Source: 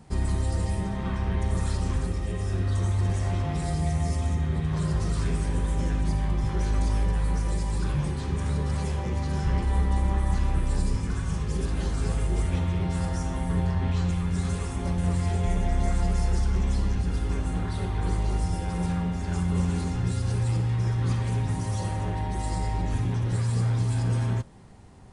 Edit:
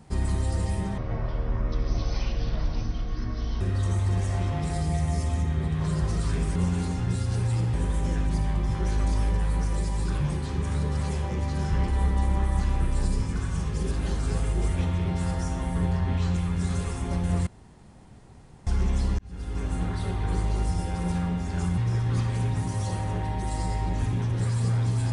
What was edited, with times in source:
0.98–2.53 s: speed 59%
15.21–16.41 s: room tone
16.93–17.48 s: fade in
19.52–20.70 s: move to 5.48 s

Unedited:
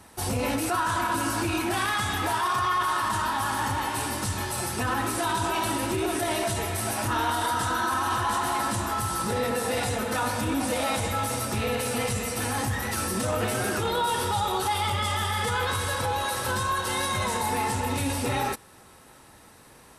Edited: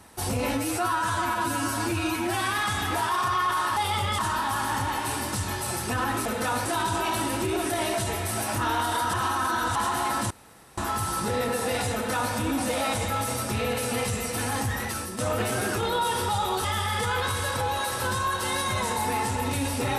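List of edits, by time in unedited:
0.53–1.90 s: stretch 1.5×
7.63–8.25 s: reverse
8.80 s: insert room tone 0.47 s
9.96–10.36 s: copy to 5.15 s
12.82–13.21 s: fade out, to -10 dB
14.67–15.09 s: move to 3.08 s

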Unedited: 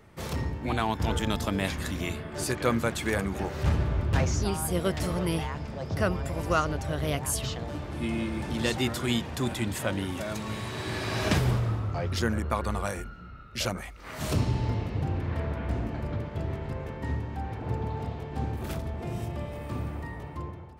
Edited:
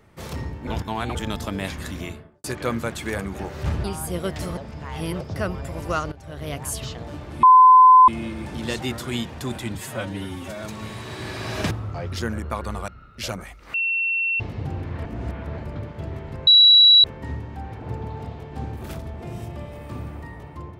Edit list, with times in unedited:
0.67–1.15 s: reverse
1.98–2.44 s: studio fade out
3.84–4.45 s: delete
5.18–5.82 s: reverse
6.73–7.23 s: fade in, from -16 dB
8.04 s: add tone 1.02 kHz -7 dBFS 0.65 s
9.71–10.29 s: stretch 1.5×
11.38–11.71 s: delete
12.88–13.25 s: delete
14.11–14.77 s: bleep 2.71 kHz -20 dBFS
15.42–15.95 s: reverse
16.84 s: add tone 3.91 kHz -8.5 dBFS 0.57 s

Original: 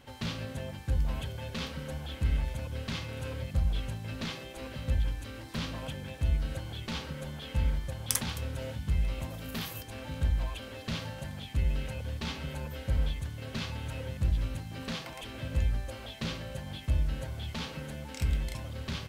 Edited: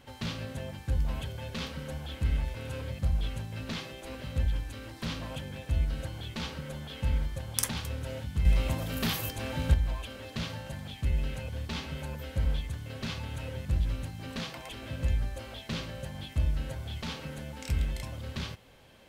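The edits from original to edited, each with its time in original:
2.55–3.07 s: delete
8.97–10.26 s: gain +6.5 dB

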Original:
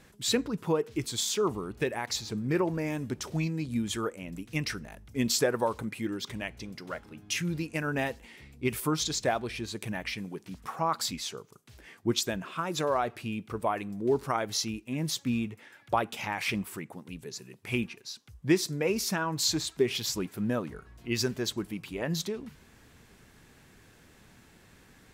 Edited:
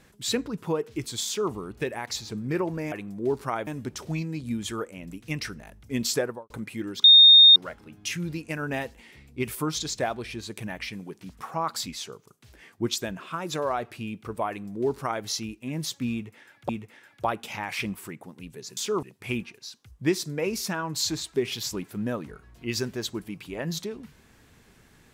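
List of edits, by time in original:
1.26–1.52 s: copy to 17.46 s
5.43–5.75 s: studio fade out
6.29–6.81 s: bleep 3.68 kHz -9 dBFS
13.74–14.49 s: copy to 2.92 s
15.38–15.94 s: loop, 2 plays

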